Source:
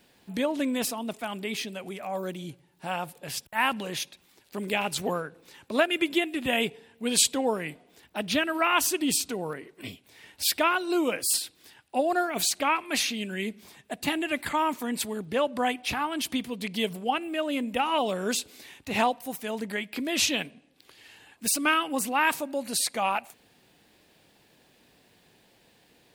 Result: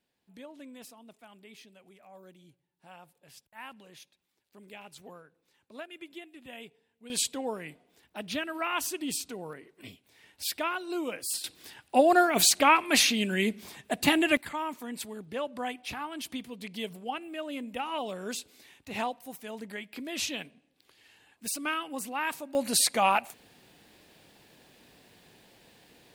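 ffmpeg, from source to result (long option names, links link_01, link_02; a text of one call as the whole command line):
ffmpeg -i in.wav -af "asetnsamples=nb_out_samples=441:pad=0,asendcmd='7.1 volume volume -7.5dB;11.44 volume volume 4.5dB;14.37 volume volume -8dB;22.55 volume volume 3dB',volume=-19.5dB" out.wav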